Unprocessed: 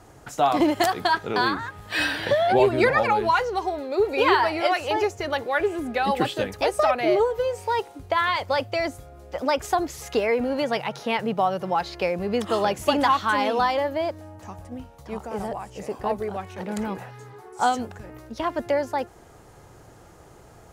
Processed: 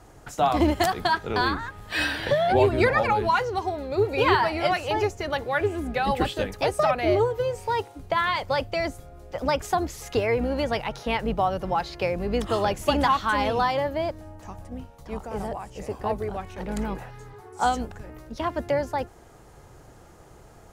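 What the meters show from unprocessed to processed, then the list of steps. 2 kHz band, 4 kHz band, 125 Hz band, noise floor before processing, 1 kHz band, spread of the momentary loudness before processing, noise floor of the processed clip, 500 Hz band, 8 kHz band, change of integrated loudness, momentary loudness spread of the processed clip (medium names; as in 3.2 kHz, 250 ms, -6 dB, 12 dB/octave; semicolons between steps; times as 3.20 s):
-1.5 dB, -1.5 dB, +5.0 dB, -49 dBFS, -1.5 dB, 15 LU, -50 dBFS, -1.5 dB, -1.5 dB, -1.5 dB, 15 LU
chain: octave divider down 2 oct, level -2 dB; trim -1.5 dB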